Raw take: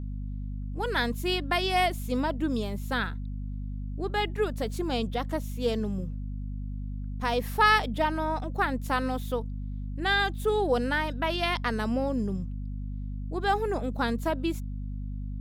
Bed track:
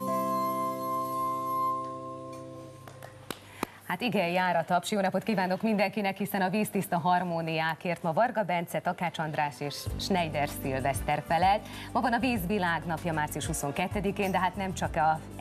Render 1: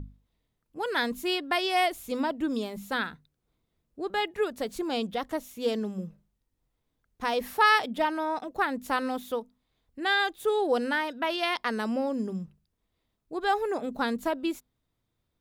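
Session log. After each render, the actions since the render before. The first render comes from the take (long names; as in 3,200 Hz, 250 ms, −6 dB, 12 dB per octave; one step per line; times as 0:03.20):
mains-hum notches 50/100/150/200/250 Hz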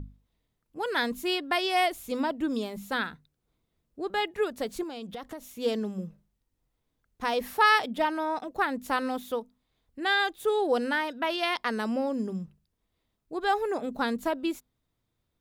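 0:04.83–0:05.48: downward compressor 10 to 1, threshold −34 dBFS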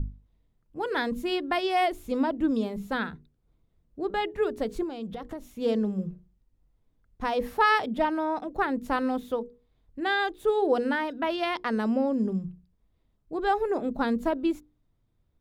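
spectral tilt −2.5 dB per octave
mains-hum notches 60/120/180/240/300/360/420/480 Hz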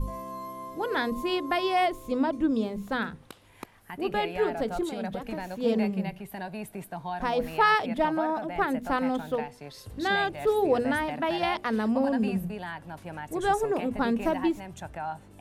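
mix in bed track −9 dB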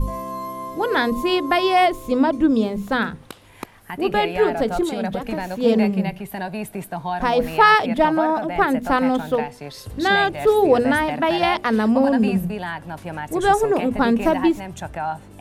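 level +8.5 dB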